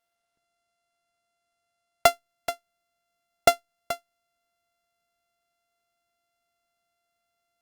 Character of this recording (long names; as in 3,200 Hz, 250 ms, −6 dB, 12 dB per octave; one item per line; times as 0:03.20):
a buzz of ramps at a fixed pitch in blocks of 64 samples
Opus